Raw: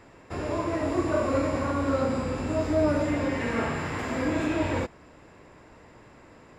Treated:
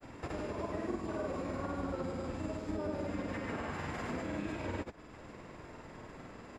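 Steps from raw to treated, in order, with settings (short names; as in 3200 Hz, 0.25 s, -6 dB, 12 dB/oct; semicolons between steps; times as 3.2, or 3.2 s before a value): harmoniser -7 st -5 dB, -3 st -12 dB, +5 st -17 dB; compressor 3:1, threshold -40 dBFS, peak gain reduction 16.5 dB; grains, pitch spread up and down by 0 st; gain +1.5 dB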